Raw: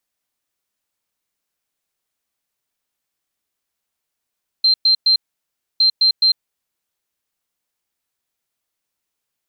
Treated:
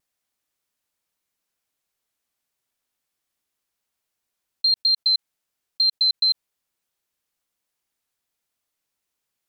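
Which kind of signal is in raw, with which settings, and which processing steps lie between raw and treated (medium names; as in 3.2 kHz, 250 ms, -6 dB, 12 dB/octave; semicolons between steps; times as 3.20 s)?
beep pattern sine 4.14 kHz, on 0.10 s, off 0.11 s, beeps 3, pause 0.64 s, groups 2, -10 dBFS
block-companded coder 7-bit; level held to a coarse grid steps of 9 dB; vibrato 1.1 Hz 24 cents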